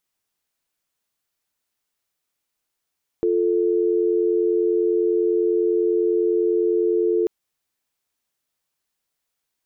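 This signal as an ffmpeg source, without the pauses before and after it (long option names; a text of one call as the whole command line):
ffmpeg -f lavfi -i "aevalsrc='0.106*(sin(2*PI*350*t)+sin(2*PI*440*t))':duration=4.04:sample_rate=44100" out.wav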